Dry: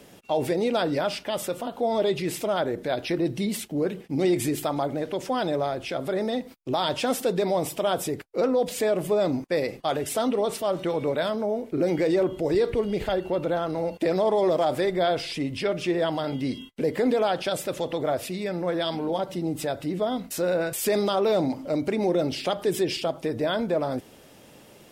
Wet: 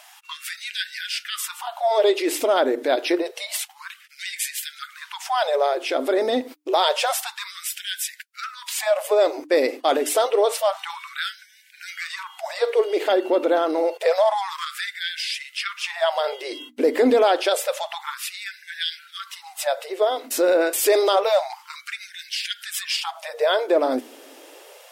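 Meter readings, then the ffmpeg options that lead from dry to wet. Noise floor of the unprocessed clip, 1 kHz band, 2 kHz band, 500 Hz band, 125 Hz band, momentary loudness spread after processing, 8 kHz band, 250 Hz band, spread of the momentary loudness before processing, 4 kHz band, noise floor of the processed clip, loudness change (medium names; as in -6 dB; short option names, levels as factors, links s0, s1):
-51 dBFS, +4.5 dB, +6.5 dB, +3.0 dB, under -30 dB, 15 LU, +7.0 dB, -3.0 dB, 6 LU, +7.0 dB, -50 dBFS, +3.5 dB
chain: -af "bandreject=f=60:t=h:w=6,bandreject=f=120:t=h:w=6,bandreject=f=180:t=h:w=6,bandreject=f=240:t=h:w=6,bandreject=f=300:t=h:w=6,acontrast=82,afftfilt=real='re*gte(b*sr/1024,230*pow(1500/230,0.5+0.5*sin(2*PI*0.28*pts/sr)))':imag='im*gte(b*sr/1024,230*pow(1500/230,0.5+0.5*sin(2*PI*0.28*pts/sr)))':win_size=1024:overlap=0.75"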